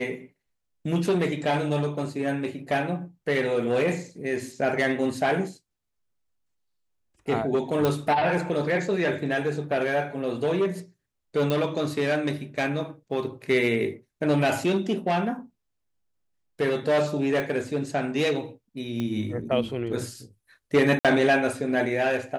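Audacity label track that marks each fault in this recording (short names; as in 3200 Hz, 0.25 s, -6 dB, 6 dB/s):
7.850000	7.850000	pop -11 dBFS
11.500000	11.500000	pop -14 dBFS
17.400000	17.400000	pop -16 dBFS
19.000000	19.000000	pop -18 dBFS
20.990000	21.050000	gap 57 ms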